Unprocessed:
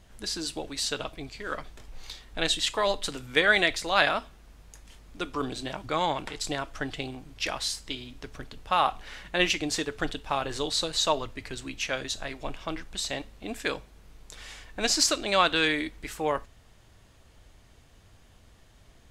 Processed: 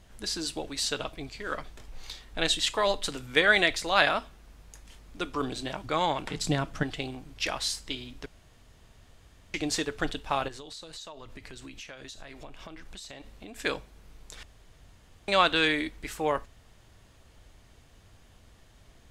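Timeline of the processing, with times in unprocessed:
6.31–6.83 bell 170 Hz +15 dB 1.2 oct
8.26–9.54 room tone
10.48–13.59 compressor 10:1, threshold -40 dBFS
14.43–15.28 room tone

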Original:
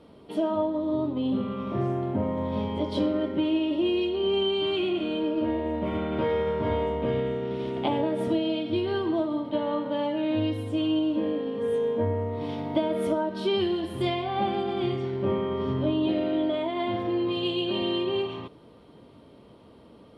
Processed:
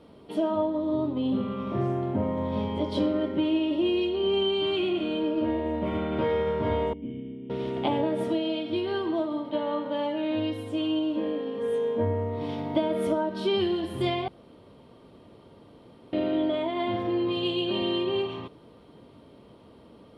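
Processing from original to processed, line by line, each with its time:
6.93–7.5 vocal tract filter i
8.23–11.96 low shelf 150 Hz -10.5 dB
14.28–16.13 room tone

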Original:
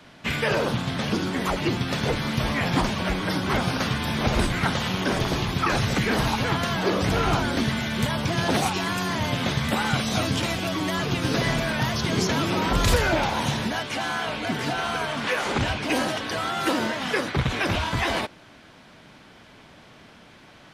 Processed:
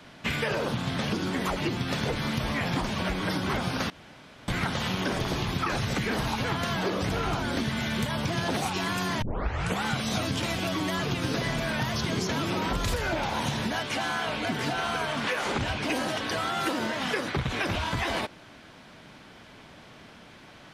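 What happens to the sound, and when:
3.9–4.48 room tone
9.22 tape start 0.61 s
whole clip: compressor, threshold -25 dBFS

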